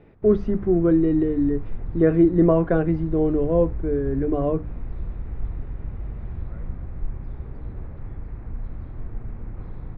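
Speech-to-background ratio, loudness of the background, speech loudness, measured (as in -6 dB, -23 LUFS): 15.0 dB, -36.0 LUFS, -21.0 LUFS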